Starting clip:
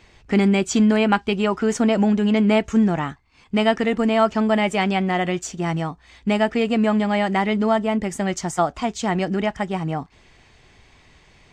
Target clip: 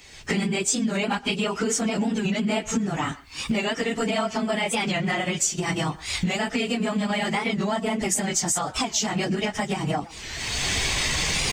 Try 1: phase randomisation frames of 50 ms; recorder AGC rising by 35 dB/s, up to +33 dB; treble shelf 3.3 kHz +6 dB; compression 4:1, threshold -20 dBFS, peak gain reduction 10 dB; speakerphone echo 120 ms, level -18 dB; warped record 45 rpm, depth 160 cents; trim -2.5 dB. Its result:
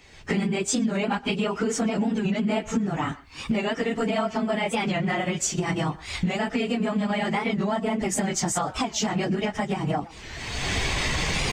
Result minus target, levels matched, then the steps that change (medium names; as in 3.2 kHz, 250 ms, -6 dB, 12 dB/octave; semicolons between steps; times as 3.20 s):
8 kHz band -4.0 dB
change: treble shelf 3.3 kHz +17.5 dB